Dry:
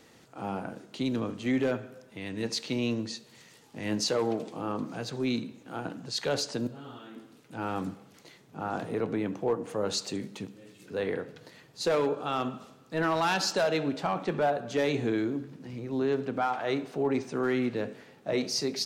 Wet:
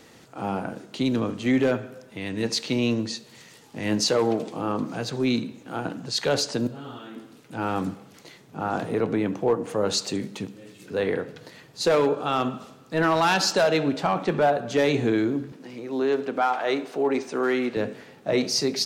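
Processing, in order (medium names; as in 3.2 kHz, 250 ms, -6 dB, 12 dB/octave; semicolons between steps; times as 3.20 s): 15.52–17.77 s: high-pass 290 Hz 12 dB/octave; trim +6 dB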